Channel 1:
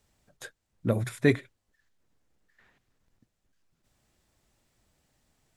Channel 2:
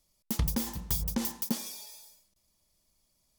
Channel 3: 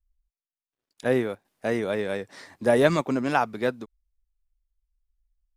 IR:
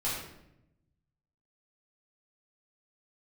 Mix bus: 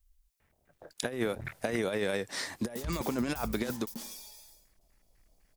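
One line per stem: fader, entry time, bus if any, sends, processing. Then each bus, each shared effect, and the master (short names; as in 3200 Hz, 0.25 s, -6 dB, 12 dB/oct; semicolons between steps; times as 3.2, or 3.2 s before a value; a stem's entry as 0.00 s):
+1.0 dB, 0.40 s, no send, cycle switcher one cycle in 3, muted; negative-ratio compressor -34 dBFS, ratio -1; LFO low-pass square 4 Hz 670–2100 Hz; auto duck -10 dB, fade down 0.65 s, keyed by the third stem
-4.0 dB, 2.45 s, no send, limiter -25.5 dBFS, peak gain reduction 8.5 dB
+0.5 dB, 0.00 s, no send, high shelf 3400 Hz +10 dB; negative-ratio compressor -28 dBFS, ratio -0.5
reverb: off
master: compressor 6:1, threshold -27 dBFS, peak gain reduction 8 dB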